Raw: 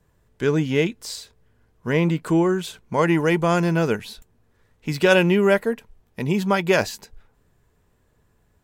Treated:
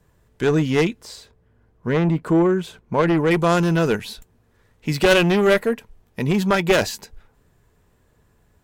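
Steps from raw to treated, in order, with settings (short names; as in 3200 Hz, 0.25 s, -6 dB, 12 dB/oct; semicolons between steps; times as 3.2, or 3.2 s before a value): 1.01–3.31 high shelf 2300 Hz -11.5 dB; added harmonics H 2 -7 dB, 5 -17 dB, 6 -19 dB, 8 -19 dB, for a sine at -5 dBFS; gain -1 dB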